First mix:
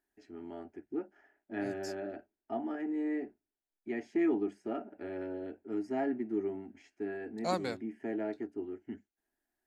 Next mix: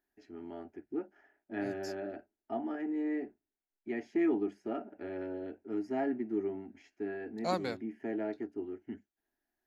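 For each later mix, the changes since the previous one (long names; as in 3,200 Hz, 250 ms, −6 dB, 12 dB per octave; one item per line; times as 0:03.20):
master: add parametric band 8,400 Hz −11 dB 0.3 octaves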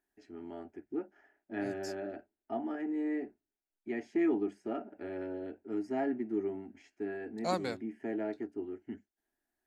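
master: add parametric band 8,400 Hz +11 dB 0.3 octaves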